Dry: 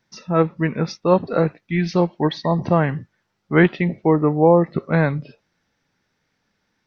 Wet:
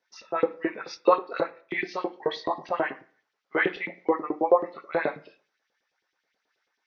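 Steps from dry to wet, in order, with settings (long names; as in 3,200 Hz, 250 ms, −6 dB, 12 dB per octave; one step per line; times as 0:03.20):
multi-voice chorus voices 2, 0.38 Hz, delay 23 ms, depth 4.9 ms
0:00.92–0:01.94: transient designer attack +7 dB, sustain −5 dB
auto-filter high-pass saw up 9.3 Hz 330–3,700 Hz
on a send at −10.5 dB: convolution reverb RT60 0.45 s, pre-delay 3 ms
on the sum: downsampling to 16,000 Hz
level −5 dB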